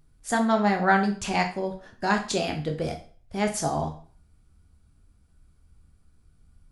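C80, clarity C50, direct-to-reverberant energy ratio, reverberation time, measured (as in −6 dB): 15.0 dB, 10.5 dB, 3.0 dB, 0.45 s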